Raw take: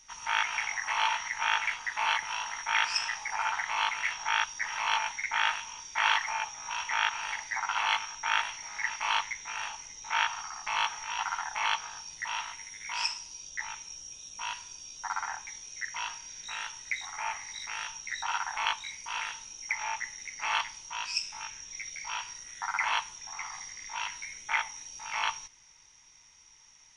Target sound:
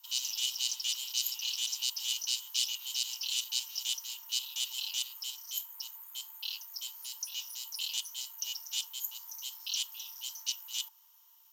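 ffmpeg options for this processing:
-af "bandreject=f=3.2k:w=6.9,afreqshift=370,aeval=exprs='0.299*(cos(1*acos(clip(val(0)/0.299,-1,1)))-cos(1*PI/2))+0.00473*(cos(3*acos(clip(val(0)/0.299,-1,1)))-cos(3*PI/2))':c=same,asetrate=103194,aresample=44100,volume=-3dB"

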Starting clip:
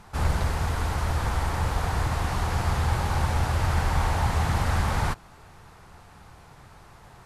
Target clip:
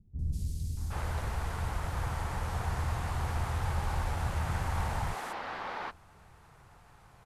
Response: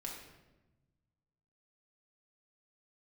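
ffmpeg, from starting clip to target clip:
-filter_complex "[0:a]aeval=exprs='clip(val(0),-1,0.119)':c=same,acrossover=split=270|4600[a][b][c];[c]adelay=190[d];[b]adelay=770[e];[a][e][d]amix=inputs=3:normalize=0,volume=-7.5dB"

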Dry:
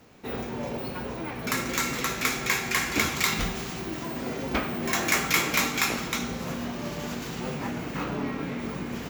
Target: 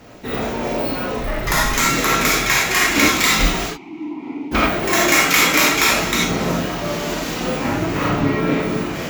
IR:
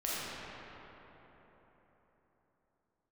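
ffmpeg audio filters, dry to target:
-filter_complex "[0:a]asettb=1/sr,asplit=3[a][b][c];[a]atrim=end=7.664[d];[b]atrim=start=7.66:end=8.35,asetpts=PTS-STARTPTS,afade=t=in:d=0.004:c=qsin,afade=t=out:st=0.686:d=0.004:c=qsin,equalizer=f=97:w=1.8:g=11[e];[c]atrim=start=8.346[f];[d][e]acrossfade=d=0.004:c1=hsin:c2=qsin[g];[g][f]acrossfade=d=0.004:c1=qsin:c2=hsin,asplit=2[h][i];[i]alimiter=limit=-13dB:level=0:latency=1:release=242,volume=-2dB[j];[h][j]amix=inputs=2:normalize=0,aphaser=in_gain=1:out_gain=1:delay=4:decay=0.31:speed=0.47:type=sinusoidal,asettb=1/sr,asplit=3[k][l][m];[k]atrim=end=1.154[n];[l]atrim=start=1.15:end=1.77,asetpts=PTS-STARTPTS,afade=t=in:d=0.004:c=qsin,afade=t=out:st=0.616:d=0.004:c=qsin,afreqshift=-280[o];[m]atrim=start=1.766[p];[n][o]acrossfade=d=0.004:c1=hsin:c2=qsin[q];[q][p]acrossfade=d=0.004:c1=qsin:c2=hsin,asplit=3[r][s][t];[r]afade=t=out:st=3.66:d=0.02[u];[s]asplit=3[v][w][x];[v]bandpass=f=300:t=q:w=8,volume=0dB[y];[w]bandpass=f=870:t=q:w=8,volume=-6dB[z];[x]bandpass=f=2.24k:t=q:w=8,volume=-9dB[aa];[y][z][aa]amix=inputs=3:normalize=0,afade=t=in:st=3.66:d=0.02,afade=t=out:st=4.51:d=0.02[ab];[t]afade=t=in:st=4.51:d=0.02[ac];[u][ab][ac]amix=inputs=3:normalize=0[ad];[1:a]atrim=start_sample=2205,afade=t=out:st=0.15:d=0.01,atrim=end_sample=7056[ae];[ad][ae]afir=irnorm=-1:irlink=0,volume=4.5dB"

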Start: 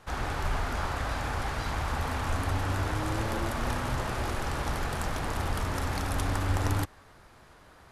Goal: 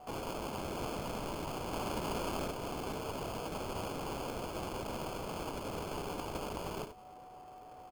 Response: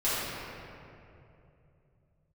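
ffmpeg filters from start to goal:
-filter_complex "[0:a]asplit=2[a][b];[b]aeval=exprs='0.0299*(abs(mod(val(0)/0.0299+3,4)-2)-1)':c=same,volume=-10.5dB[c];[a][c]amix=inputs=2:normalize=0,asettb=1/sr,asplit=3[d][e][f];[d]atrim=end=1.734[g];[e]atrim=start=1.73:end=2.48,asetpts=PTS-STARTPTS,afade=t=in:d=0.004:c=qsin,afade=t=out:st=0.746:d=0.004:c=qsin,highshelf=f=2.7k:g=10.5[h];[f]atrim=start=2.476[i];[g][h]acrossfade=d=0.004:c1=hsin:c2=qsin[j];[j][i]acrossfade=d=0.004:c1=qsin:c2=hsin,aecho=1:1:77:0.376,highpass=f=180:t=q:w=0.5412,highpass=f=180:t=q:w=1.307,lowpass=f=3.3k:t=q:w=0.5176,lowpass=f=3.3k:t=q:w=0.7071,lowpass=f=3.3k:t=q:w=1.932,afreqshift=140,aeval=exprs='val(0)+0.00355*sin(2*PI*740*n/s)':c=same,acrossover=split=1200[k][l];[k]acompressor=threshold=-44dB:ratio=6[m];[l]acrusher=samples=23:mix=1:aa=0.000001[n];[m][n]amix=inputs=2:normalize=0,volume=-1dB"

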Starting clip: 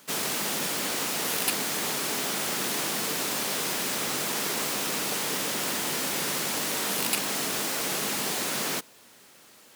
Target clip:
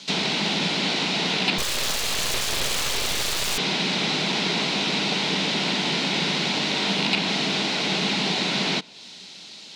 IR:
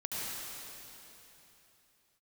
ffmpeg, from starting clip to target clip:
-filter_complex "[0:a]acrossover=split=2700[a][b];[b]acompressor=threshold=-43dB:ratio=10[c];[a][c]amix=inputs=2:normalize=0,highpass=100,equalizer=f=180:t=q:w=4:g=10,equalizer=f=520:t=q:w=4:g=-6,equalizer=f=1.2k:t=q:w=4:g=-10,equalizer=f=1.7k:t=q:w=4:g=-8,equalizer=f=3.9k:t=q:w=4:g=6,lowpass=f=4.9k:w=0.5412,lowpass=f=4.9k:w=1.3066,asettb=1/sr,asplit=3[d][e][f];[d]atrim=end=1.584[g];[e]atrim=start=1.58:end=3.58,asetpts=PTS-STARTPTS,afade=t=in:d=0.004:c=qsin,afade=t=out:st=1.996:d=0.004:c=qsin,aeval=exprs='abs(val(0))':c=same[h];[f]atrim=start=3.576[i];[g][h]acrossfade=d=0.004:c1=hsin:c2=qsin[j];[j][i]acrossfade=d=0.004:c1=qsin:c2=hsin,crystalizer=i=5:c=0,volume=6.5dB"

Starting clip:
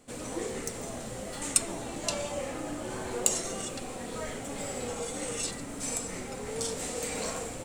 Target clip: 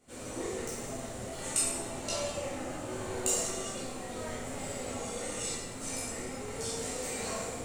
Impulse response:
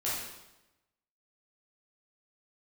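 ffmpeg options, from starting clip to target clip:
-filter_complex "[1:a]atrim=start_sample=2205[a];[0:a][a]afir=irnorm=-1:irlink=0,volume=-7.5dB"

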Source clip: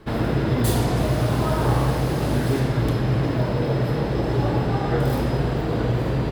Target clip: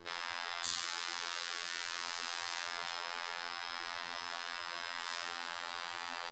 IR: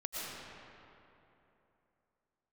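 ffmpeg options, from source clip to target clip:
-filter_complex "[0:a]bandreject=f=60:t=h:w=6,bandreject=f=120:t=h:w=6,bandreject=f=180:t=h:w=6,bandreject=f=240:t=h:w=6,bandreject=f=300:t=h:w=6,bandreject=f=360:t=h:w=6,bandreject=f=420:t=h:w=6,bandreject=f=480:t=h:w=6,afftfilt=real='re*lt(hypot(re,im),0.0794)':imag='im*lt(hypot(re,im),0.0794)':win_size=1024:overlap=0.75,bass=f=250:g=-6,treble=f=4k:g=7,acrossover=split=510|2500[a][b][c];[a]acompressor=mode=upward:threshold=-58dB:ratio=2.5[d];[d][b][c]amix=inputs=3:normalize=0,afftfilt=real='hypot(re,im)*cos(PI*b)':imag='0':win_size=2048:overlap=0.75,aresample=16000,volume=18.5dB,asoftclip=hard,volume=-18.5dB,aresample=44100,volume=-2.5dB"

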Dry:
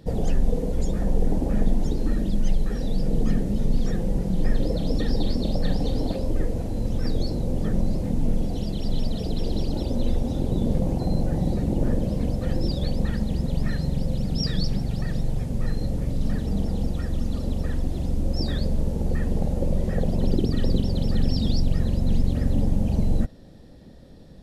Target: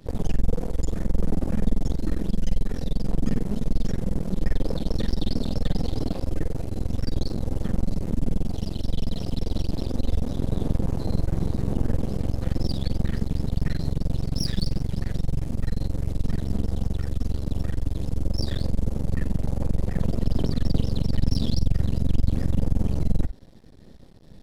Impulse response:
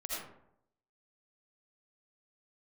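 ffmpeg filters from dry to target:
-filter_complex "[0:a]equalizer=f=750:w=0.6:g=-5,aeval=exprs='max(val(0),0)':c=same,asplit=2[a][b];[1:a]atrim=start_sample=2205,atrim=end_sample=3087,asetrate=48510,aresample=44100[c];[b][c]afir=irnorm=-1:irlink=0,volume=-4dB[d];[a][d]amix=inputs=2:normalize=0"

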